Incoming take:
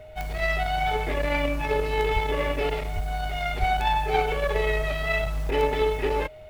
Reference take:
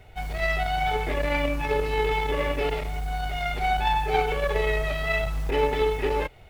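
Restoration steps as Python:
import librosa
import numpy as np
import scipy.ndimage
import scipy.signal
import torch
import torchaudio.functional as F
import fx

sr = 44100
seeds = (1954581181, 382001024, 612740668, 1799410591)

y = fx.fix_declick_ar(x, sr, threshold=10.0)
y = fx.notch(y, sr, hz=620.0, q=30.0)
y = fx.fix_deplosive(y, sr, at_s=(2.13, 2.94, 3.59))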